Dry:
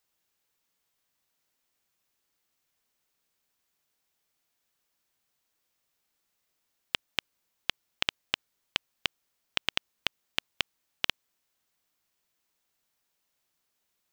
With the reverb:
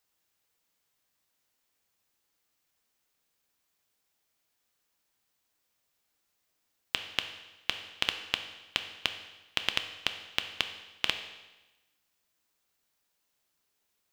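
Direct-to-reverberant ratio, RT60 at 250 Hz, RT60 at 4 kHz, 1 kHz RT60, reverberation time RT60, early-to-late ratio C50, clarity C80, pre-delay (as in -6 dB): 7.0 dB, 1.1 s, 1.0 s, 1.1 s, 1.1 s, 9.5 dB, 11.5 dB, 4 ms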